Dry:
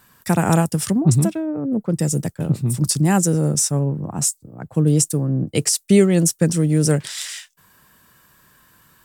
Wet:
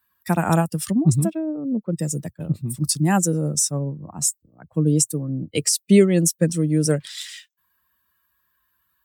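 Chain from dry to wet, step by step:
spectral dynamics exaggerated over time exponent 1.5
high-pass filter 59 Hz
parametric band 120 Hz −6.5 dB 0.29 octaves
level +1 dB

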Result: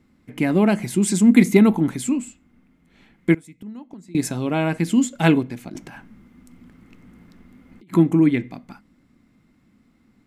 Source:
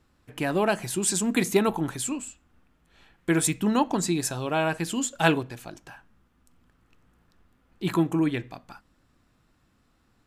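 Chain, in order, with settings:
0:05.69–0:07.93: compressor whose output falls as the input rises −48 dBFS, ratio −1
hollow resonant body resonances 220/2,100 Hz, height 15 dB, ringing for 25 ms
0:03.34–0:04.15: gate with flip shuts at −14 dBFS, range −25 dB
level −1 dB

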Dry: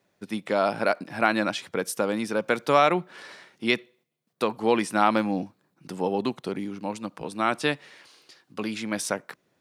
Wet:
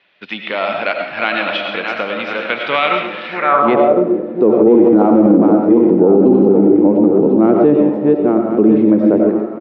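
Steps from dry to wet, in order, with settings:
feedback delay that plays each chunk backwards 526 ms, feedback 52%, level −7 dB
spectral tilt −4.5 dB per octave
repeating echo 224 ms, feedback 53%, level −22.5 dB
in parallel at −4 dB: soft clipping −12.5 dBFS, distortion −14 dB
on the sum: low-pass filter 4,300 Hz 24 dB per octave
on a send at −4 dB: convolution reverb RT60 0.50 s, pre-delay 56 ms
on the sum: band-pass filter sweep 2,900 Hz → 370 Hz, 0:03.27–0:04.04
low-shelf EQ 80 Hz −8.5 dB
far-end echo of a speakerphone 280 ms, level −24 dB
boost into a limiter +17.5 dB
one half of a high-frequency compander encoder only
level −1 dB

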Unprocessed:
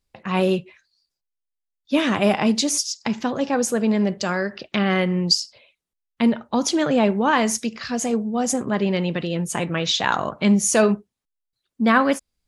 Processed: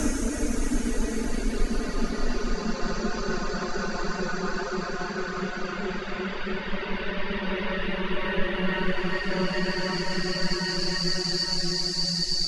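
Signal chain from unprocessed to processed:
extreme stretch with random phases 8×, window 1.00 s, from 0:03.79
reverb reduction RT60 0.62 s
frequency shifter −190 Hz
level −2.5 dB

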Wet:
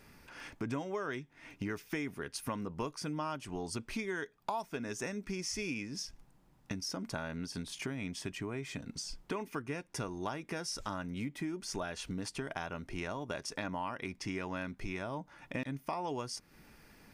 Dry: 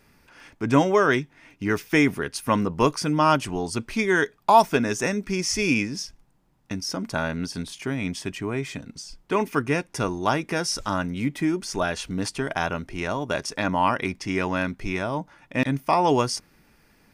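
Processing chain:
downward compressor 5 to 1, threshold −37 dBFS, peak gain reduction 23.5 dB

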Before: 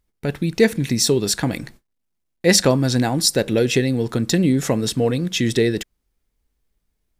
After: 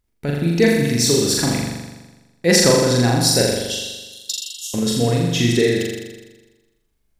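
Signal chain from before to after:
0:03.52–0:04.74: linear-phase brick-wall high-pass 2,700 Hz
on a send: flutter between parallel walls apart 7.1 metres, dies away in 1.2 s
on the sum: level −1.5 dB

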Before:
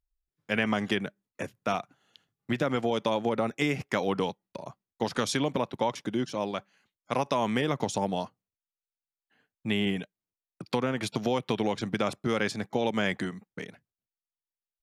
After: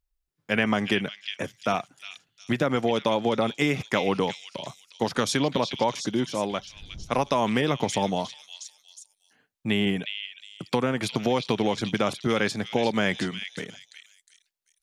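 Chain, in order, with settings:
0:06.48–0:07.36: wind on the microphone 91 Hz −43 dBFS
echo through a band-pass that steps 360 ms, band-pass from 3,400 Hz, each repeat 0.7 octaves, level −2.5 dB
level +3.5 dB

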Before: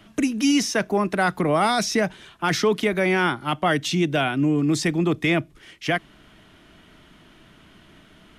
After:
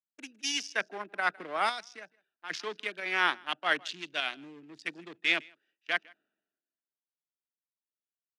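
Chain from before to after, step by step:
adaptive Wiener filter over 41 samples
parametric band 1,600 Hz +3 dB 0.26 octaves
in parallel at +2.5 dB: fake sidechain pumping 100 BPM, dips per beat 1, −15 dB, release 84 ms
on the sum: band-pass filter 220–3,800 Hz
first difference
single-tap delay 160 ms −22.5 dB
0:01.69–0:02.50: downward compressor 1.5 to 1, threshold −47 dBFS, peak gain reduction 7.5 dB
multiband upward and downward expander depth 100%

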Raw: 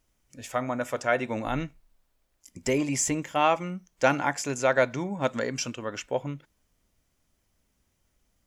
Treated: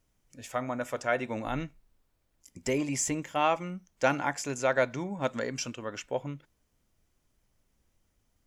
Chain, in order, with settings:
background noise brown −70 dBFS
level −3.5 dB

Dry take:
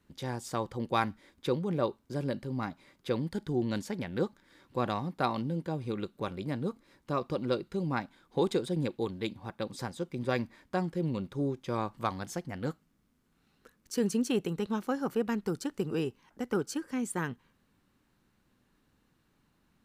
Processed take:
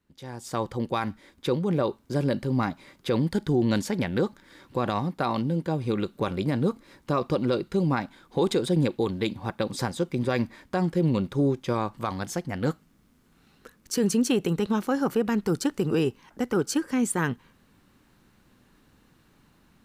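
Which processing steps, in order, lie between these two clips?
automatic gain control gain up to 16.5 dB
brickwall limiter −9 dBFS, peak gain reduction 7.5 dB
level −6 dB

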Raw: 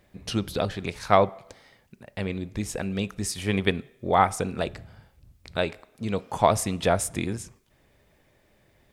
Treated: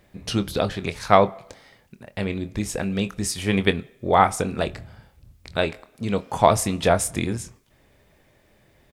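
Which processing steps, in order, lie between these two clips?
double-tracking delay 25 ms −12 dB
level +3.5 dB

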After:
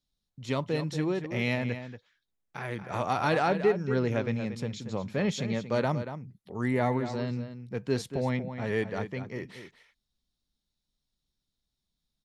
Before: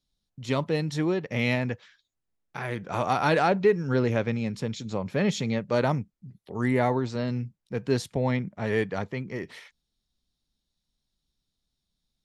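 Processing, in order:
slap from a distant wall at 40 metres, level −10 dB
level −3.5 dB

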